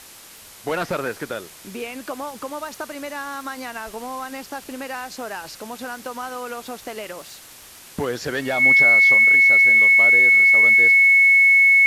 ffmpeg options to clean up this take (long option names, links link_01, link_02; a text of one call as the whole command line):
ffmpeg -i in.wav -af "adeclick=threshold=4,bandreject=frequency=2200:width=30,afwtdn=0.0079" out.wav